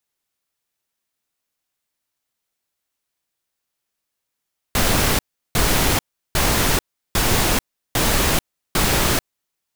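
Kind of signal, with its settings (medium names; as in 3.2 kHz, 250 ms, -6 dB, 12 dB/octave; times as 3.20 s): noise bursts pink, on 0.44 s, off 0.36 s, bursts 6, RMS -17.5 dBFS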